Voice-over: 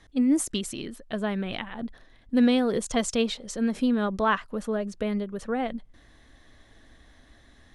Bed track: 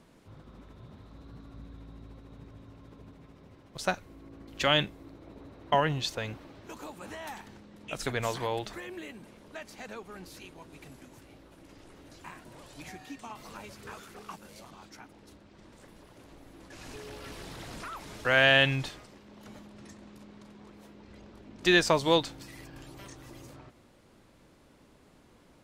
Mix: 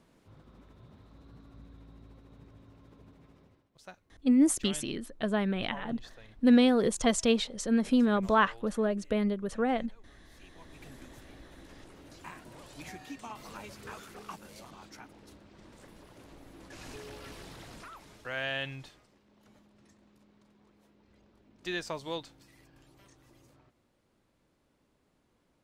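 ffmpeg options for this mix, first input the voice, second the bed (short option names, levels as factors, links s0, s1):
-filter_complex "[0:a]adelay=4100,volume=0.944[s0];[1:a]volume=5.62,afade=t=out:st=3.37:d=0.31:silence=0.177828,afade=t=in:st=10.27:d=0.71:silence=0.1,afade=t=out:st=16.75:d=1.55:silence=0.223872[s1];[s0][s1]amix=inputs=2:normalize=0"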